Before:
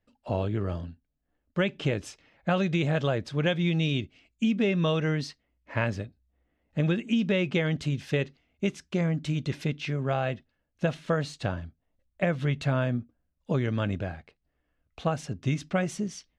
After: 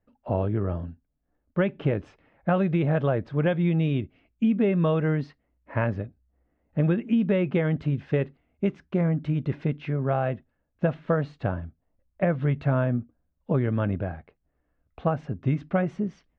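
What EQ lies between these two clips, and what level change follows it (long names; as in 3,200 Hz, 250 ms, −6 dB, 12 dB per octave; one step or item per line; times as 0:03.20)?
low-pass filter 1,500 Hz 12 dB per octave
+3.0 dB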